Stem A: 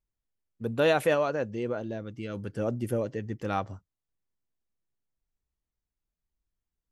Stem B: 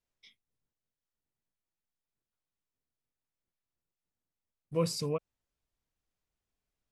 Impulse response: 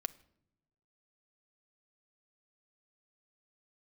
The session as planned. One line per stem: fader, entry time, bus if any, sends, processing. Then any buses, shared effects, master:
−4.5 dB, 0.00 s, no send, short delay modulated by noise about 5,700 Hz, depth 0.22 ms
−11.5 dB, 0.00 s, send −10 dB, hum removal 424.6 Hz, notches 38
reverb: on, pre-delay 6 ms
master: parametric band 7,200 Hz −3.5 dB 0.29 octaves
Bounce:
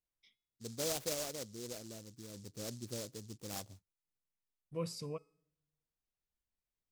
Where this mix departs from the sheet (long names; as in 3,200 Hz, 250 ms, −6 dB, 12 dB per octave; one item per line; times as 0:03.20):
stem A −4.5 dB → −14.0 dB
master: missing parametric band 7,200 Hz −3.5 dB 0.29 octaves